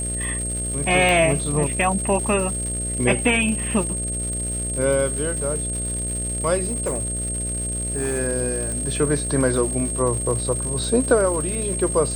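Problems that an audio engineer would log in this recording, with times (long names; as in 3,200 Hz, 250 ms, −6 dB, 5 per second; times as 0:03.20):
mains buzz 60 Hz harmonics 11 −29 dBFS
surface crackle 310 per second −29 dBFS
whistle 8,500 Hz −26 dBFS
0:01.09: click
0:06.68–0:08.20: clipping −19.5 dBFS
0:08.72: click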